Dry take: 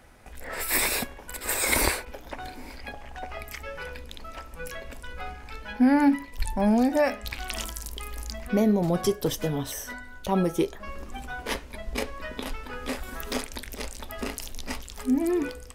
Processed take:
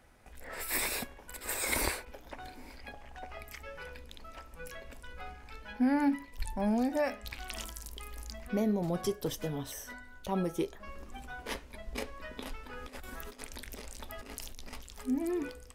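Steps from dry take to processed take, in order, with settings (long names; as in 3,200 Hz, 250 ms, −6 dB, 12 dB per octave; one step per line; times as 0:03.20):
0:12.77–0:14.73: compressor whose output falls as the input rises −35 dBFS, ratio −0.5
level −8 dB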